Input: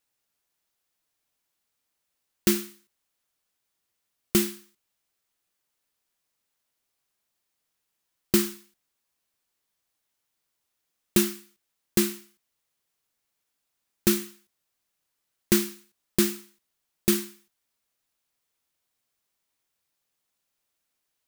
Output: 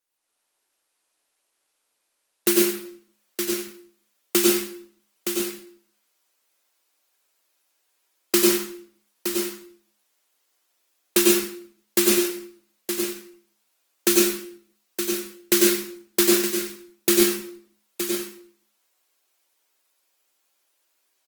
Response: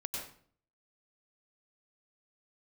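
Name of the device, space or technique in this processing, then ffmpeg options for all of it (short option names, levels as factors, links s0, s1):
far-field microphone of a smart speaker: -filter_complex "[0:a]highpass=f=300:w=0.5412,highpass=f=300:w=1.3066,asettb=1/sr,asplit=3[s0][s1][s2];[s0]atrim=end=14.084[s3];[s1]atrim=start=14.08:end=15.69,asetpts=PTS-STARTPTS,afade=t=in:d=0.004:c=qsin,afade=t=out:st=1.606:d=0.004:c=qsin,equalizer=f=920:t=o:w=1.6:g=-2.5[s4];[s2]atrim=start=15.686[s5];[s3][s4]acrossfade=d=0.004:c1=hsin:c2=qsin[s6];[s6][s5]acrossfade=d=0.004:c1=qsin:c2=hsin,aecho=1:1:918:0.376[s7];[1:a]atrim=start_sample=2205[s8];[s7][s8]afir=irnorm=-1:irlink=0,highpass=f=86:p=1,dynaudnorm=f=180:g=3:m=2.51" -ar 48000 -c:a libopus -b:a 24k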